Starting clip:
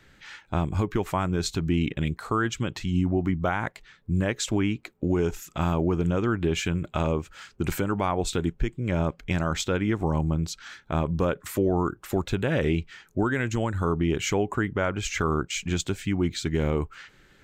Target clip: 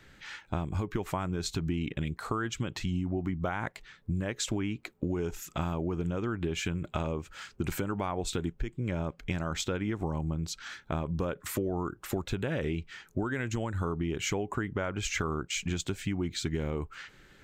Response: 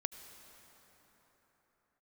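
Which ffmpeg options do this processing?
-af "acompressor=threshold=-28dB:ratio=6"

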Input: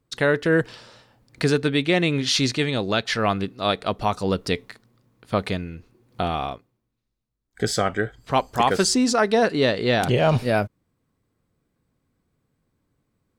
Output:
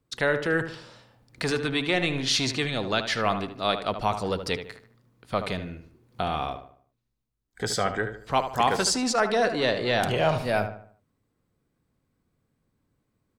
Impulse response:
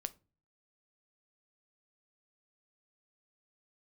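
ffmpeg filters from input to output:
-filter_complex "[0:a]acrossover=split=540|3700[a][b][c];[a]asoftclip=type=tanh:threshold=-24.5dB[d];[d][b][c]amix=inputs=3:normalize=0,asplit=2[e][f];[f]adelay=75,lowpass=f=2.6k:p=1,volume=-9dB,asplit=2[g][h];[h]adelay=75,lowpass=f=2.6k:p=1,volume=0.41,asplit=2[i][j];[j]adelay=75,lowpass=f=2.6k:p=1,volume=0.41,asplit=2[k][l];[l]adelay=75,lowpass=f=2.6k:p=1,volume=0.41,asplit=2[m][n];[n]adelay=75,lowpass=f=2.6k:p=1,volume=0.41[o];[e][g][i][k][m][o]amix=inputs=6:normalize=0,volume=-2.5dB"

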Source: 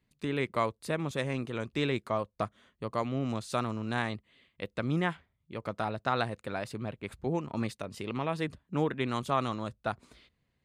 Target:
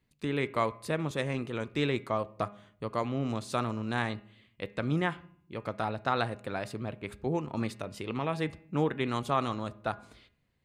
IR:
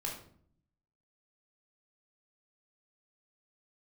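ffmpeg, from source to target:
-filter_complex "[0:a]bandreject=f=204.8:t=h:w=4,bandreject=f=409.6:t=h:w=4,bandreject=f=614.4:t=h:w=4,bandreject=f=819.2:t=h:w=4,bandreject=f=1.024k:t=h:w=4,bandreject=f=1.2288k:t=h:w=4,bandreject=f=1.4336k:t=h:w=4,bandreject=f=1.6384k:t=h:w=4,bandreject=f=1.8432k:t=h:w=4,bandreject=f=2.048k:t=h:w=4,bandreject=f=2.2528k:t=h:w=4,bandreject=f=2.4576k:t=h:w=4,bandreject=f=2.6624k:t=h:w=4,bandreject=f=2.8672k:t=h:w=4,asplit=2[a][b];[1:a]atrim=start_sample=2205,lowpass=4.7k[c];[b][c]afir=irnorm=-1:irlink=0,volume=-17.5dB[d];[a][d]amix=inputs=2:normalize=0"

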